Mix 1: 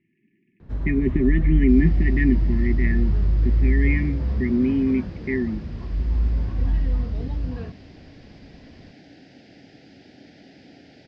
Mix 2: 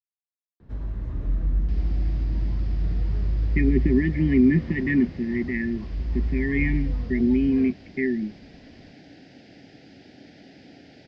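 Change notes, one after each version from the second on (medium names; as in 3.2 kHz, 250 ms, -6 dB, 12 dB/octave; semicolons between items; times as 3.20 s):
speech: entry +2.70 s; first sound -4.5 dB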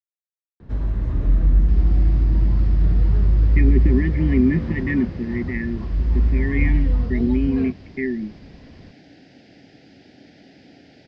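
first sound +8.0 dB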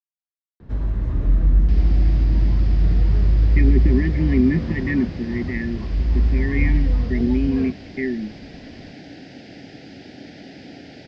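second sound +8.5 dB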